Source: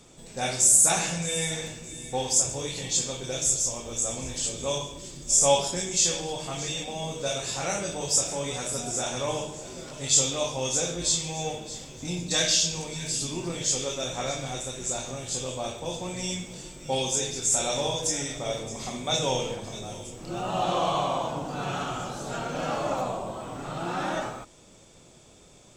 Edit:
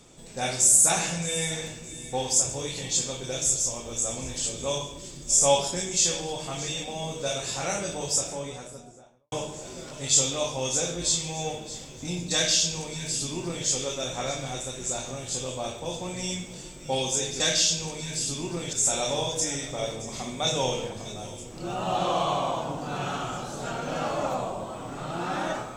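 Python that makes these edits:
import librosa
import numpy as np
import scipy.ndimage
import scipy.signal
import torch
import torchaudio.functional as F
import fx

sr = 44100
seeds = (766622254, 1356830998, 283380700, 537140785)

y = fx.studio_fade_out(x, sr, start_s=7.93, length_s=1.39)
y = fx.edit(y, sr, fx.duplicate(start_s=12.33, length_s=1.33, to_s=17.4), tone=tone)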